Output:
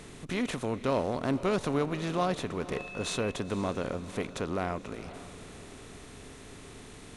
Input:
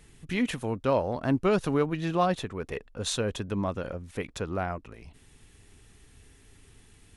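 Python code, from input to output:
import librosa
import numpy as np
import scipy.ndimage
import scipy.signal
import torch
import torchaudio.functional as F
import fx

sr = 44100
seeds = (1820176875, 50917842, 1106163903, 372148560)

y = fx.bin_compress(x, sr, power=0.6)
y = fx.dmg_tone(y, sr, hz=2600.0, level_db=-36.0, at=(2.77, 3.31), fade=0.02)
y = fx.echo_diffused(y, sr, ms=499, feedback_pct=40, wet_db=-14.5)
y = F.gain(torch.from_numpy(y), -6.0).numpy()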